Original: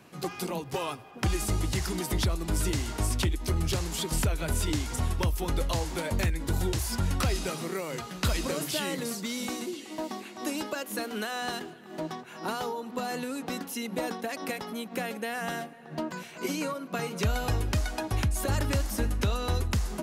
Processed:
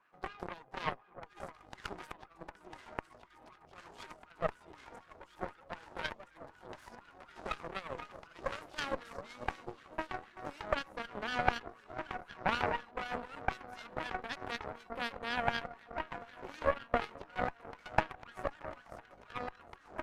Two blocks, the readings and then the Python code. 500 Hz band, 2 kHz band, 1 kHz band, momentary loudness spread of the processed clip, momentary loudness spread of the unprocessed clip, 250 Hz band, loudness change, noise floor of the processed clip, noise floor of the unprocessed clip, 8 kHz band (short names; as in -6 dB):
-7.0 dB, -3.5 dB, -2.5 dB, 19 LU, 7 LU, -15.0 dB, -8.5 dB, -63 dBFS, -46 dBFS, -25.5 dB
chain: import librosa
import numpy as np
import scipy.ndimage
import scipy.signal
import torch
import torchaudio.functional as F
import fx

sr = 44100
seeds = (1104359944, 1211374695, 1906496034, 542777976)

y = fx.over_compress(x, sr, threshold_db=-30.0, ratio=-0.5)
y = fx.echo_alternate(y, sr, ms=660, hz=900.0, feedback_pct=79, wet_db=-8.5)
y = fx.wah_lfo(y, sr, hz=4.0, low_hz=600.0, high_hz=1600.0, q=3.4)
y = fx.cheby_harmonics(y, sr, harmonics=(2, 3, 7), levels_db=(-8, -12, -33), full_scale_db=-22.5)
y = F.gain(torch.from_numpy(y), 12.5).numpy()